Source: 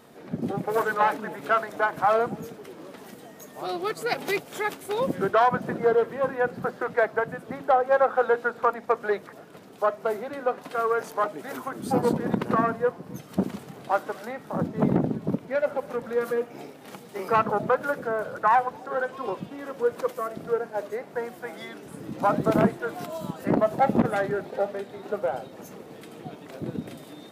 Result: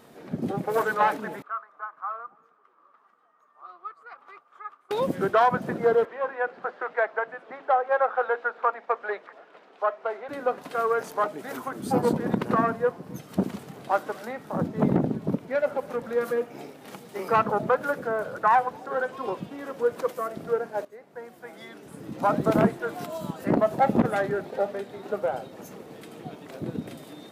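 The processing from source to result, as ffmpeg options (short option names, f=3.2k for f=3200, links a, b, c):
-filter_complex "[0:a]asettb=1/sr,asplit=3[a][b][c];[a]atrim=end=1.424[d];[b]atrim=start=1.42:end=4.91,asetpts=PTS-STARTPTS,afade=t=in:d=0.004:c=qsin,afade=t=out:st=3.486:d=0.004:c=qsin,bandpass=f=1.2k:t=q:w=11[e];[c]atrim=start=4.906[f];[d][e]acrossfade=d=0.004:c1=hsin:c2=qsin[g];[g][f]acrossfade=d=0.004:c1=qsin:c2=hsin,asettb=1/sr,asplit=3[h][i][j];[h]atrim=end=6.054[k];[i]atrim=start=6.05:end=10.29,asetpts=PTS-STARTPTS,afade=t=in:d=0.004:c=qsin,afade=t=out:st=4.236:d=0.004:c=qsin,highpass=580,lowpass=2.9k[l];[j]atrim=start=10.286[m];[k][l]acrossfade=d=0.004:c1=hsin:c2=qsin[n];[n][m]acrossfade=d=0.004:c1=qsin:c2=hsin,asplit=2[o][p];[o]atrim=end=20.85,asetpts=PTS-STARTPTS,afade=t=out:st=20.846:d=0.004:c=hsin:silence=0.141254[q];[p]atrim=start=20.85,asetpts=PTS-STARTPTS,afade=t=in:d=1.54:silence=0.141254[r];[q][r]concat=n=2:v=0:a=1"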